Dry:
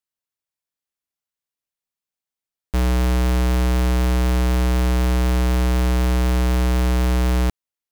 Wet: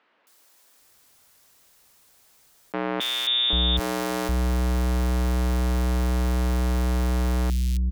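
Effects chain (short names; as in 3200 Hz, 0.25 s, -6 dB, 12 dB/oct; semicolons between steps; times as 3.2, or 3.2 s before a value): 3–3.5 inverted band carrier 3600 Hz; three bands offset in time mids, highs, lows 0.27/0.79 s, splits 220/2700 Hz; fast leveller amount 50%; gain -6 dB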